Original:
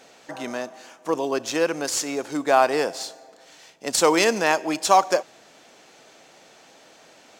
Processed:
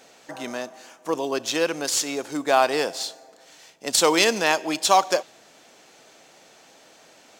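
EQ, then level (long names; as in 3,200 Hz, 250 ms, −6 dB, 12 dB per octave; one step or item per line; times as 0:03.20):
high-shelf EQ 7,700 Hz +5.5 dB
dynamic equaliser 3,500 Hz, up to +7 dB, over −42 dBFS, Q 1.7
−1.5 dB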